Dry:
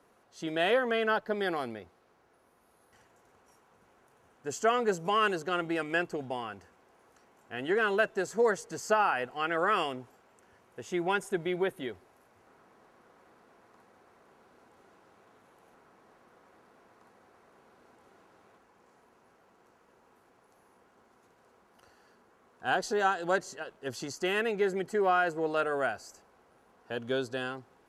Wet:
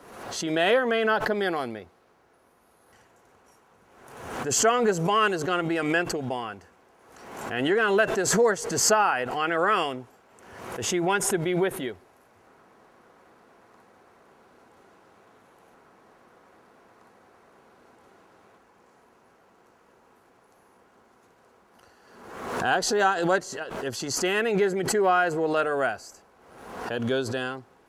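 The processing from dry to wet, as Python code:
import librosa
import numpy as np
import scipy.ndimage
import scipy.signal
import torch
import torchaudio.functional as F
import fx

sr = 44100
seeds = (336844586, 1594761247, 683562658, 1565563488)

y = fx.pre_swell(x, sr, db_per_s=52.0)
y = F.gain(torch.from_numpy(y), 4.5).numpy()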